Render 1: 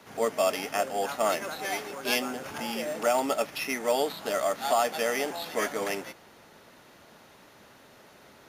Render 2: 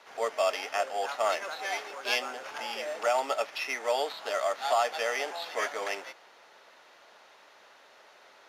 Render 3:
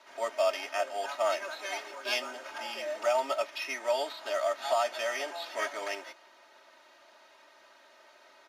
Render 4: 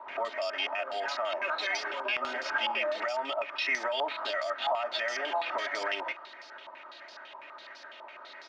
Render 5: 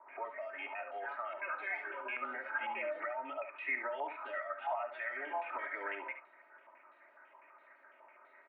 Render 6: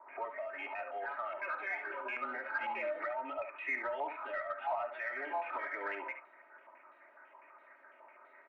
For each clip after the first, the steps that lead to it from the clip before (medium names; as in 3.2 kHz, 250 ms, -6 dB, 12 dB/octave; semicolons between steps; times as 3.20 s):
three-band isolator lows -24 dB, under 450 Hz, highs -14 dB, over 6.7 kHz
comb 3.2 ms, depth 90%; trim -4.5 dB
compression 3:1, threshold -35 dBFS, peak gain reduction 9.5 dB; peak limiter -32 dBFS, peak gain reduction 9.5 dB; step-sequenced low-pass 12 Hz 980–5000 Hz; trim +6 dB
Chebyshev band-pass 240–2300 Hz, order 4; spectral noise reduction 7 dB; delay 70 ms -9.5 dB; trim -5.5 dB
in parallel at -7 dB: saturation -37 dBFS, distortion -12 dB; on the sum: distance through air 190 m